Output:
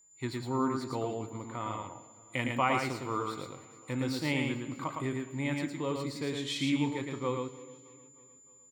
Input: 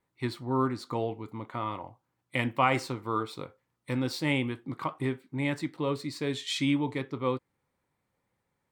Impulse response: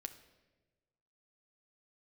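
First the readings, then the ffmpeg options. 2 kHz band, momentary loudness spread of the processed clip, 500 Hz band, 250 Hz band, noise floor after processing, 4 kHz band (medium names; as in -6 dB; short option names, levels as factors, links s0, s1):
-2.0 dB, 12 LU, -2.5 dB, -2.0 dB, -58 dBFS, -2.0 dB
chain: -filter_complex "[0:a]aeval=exprs='val(0)+0.00158*sin(2*PI*7100*n/s)':c=same,aecho=1:1:307|614|921|1228:0.0794|0.0469|0.0277|0.0163,asplit=2[s0][s1];[1:a]atrim=start_sample=2205,adelay=111[s2];[s1][s2]afir=irnorm=-1:irlink=0,volume=1.06[s3];[s0][s3]amix=inputs=2:normalize=0,volume=0.631"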